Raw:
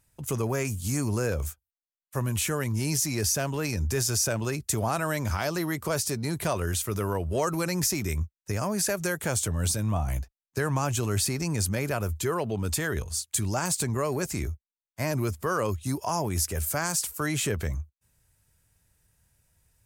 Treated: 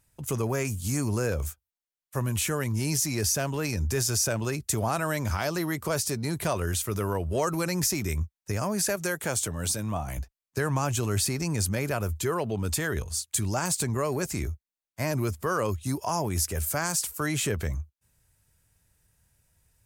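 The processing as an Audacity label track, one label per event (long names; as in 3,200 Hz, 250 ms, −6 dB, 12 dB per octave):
8.960000	10.180000	high-pass filter 170 Hz 6 dB per octave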